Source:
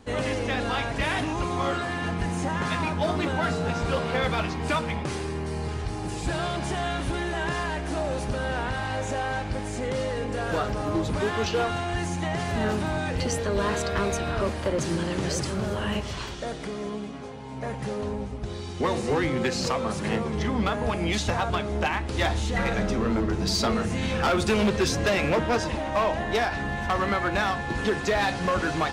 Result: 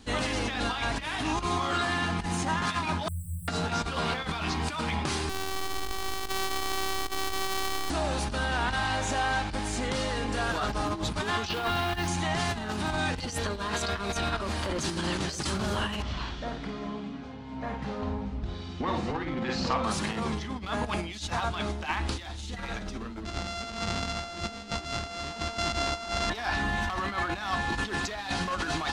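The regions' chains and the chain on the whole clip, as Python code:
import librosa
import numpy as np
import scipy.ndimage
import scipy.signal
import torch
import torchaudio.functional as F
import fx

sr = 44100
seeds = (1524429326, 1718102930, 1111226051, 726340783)

y = fx.chain(x, sr, fx.mod_noise(seeds[0], snr_db=28),
    fx.brickwall_bandstop(low_hz=160.0, high_hz=7600.0), at=(3.08, 3.48))
y = fx.chain(y, sr, fx.sample_sort(block=256),
    fx.robotise(hz=382.0),
    fx.echo_single(ms=220, db=-9.0), at=(5.29, 7.9))
y = fx.chain(y, sr, fx.savgol(points=15),
    fx.quant_companded(bits=6), at=(11.49, 12.08))
y = fx.chain(y, sr, fx.spacing_loss(db_at_10k=25),
    fx.notch(hz=400.0, q=12.0),
    fx.doubler(ms=50.0, db=-6.5), at=(16.02, 19.84))
y = fx.chain(y, sr, fx.sample_sort(block=64),
    fx.lowpass(hz=7200.0, slope=24), at=(23.25, 26.3))
y = fx.graphic_eq(y, sr, hz=(125, 500, 1000, 2000, 4000), db=(-8, -10, -5, -3, 4))
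y = fx.over_compress(y, sr, threshold_db=-33.0, ratio=-0.5)
y = fx.dynamic_eq(y, sr, hz=1000.0, q=1.1, threshold_db=-50.0, ratio=4.0, max_db=7)
y = y * 10.0 ** (1.5 / 20.0)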